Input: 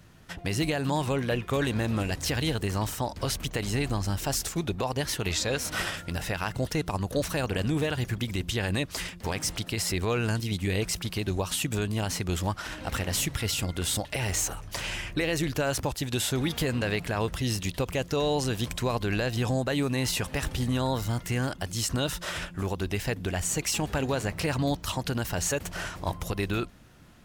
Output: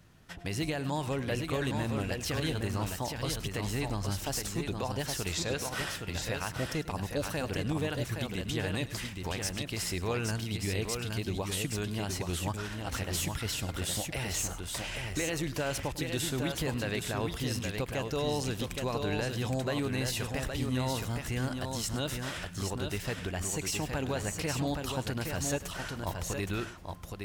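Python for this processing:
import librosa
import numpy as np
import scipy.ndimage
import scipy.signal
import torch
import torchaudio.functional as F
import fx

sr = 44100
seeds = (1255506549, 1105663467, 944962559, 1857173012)

y = fx.echo_multitap(x, sr, ms=(102, 818), db=(-16.0, -5.0))
y = F.gain(torch.from_numpy(y), -5.5).numpy()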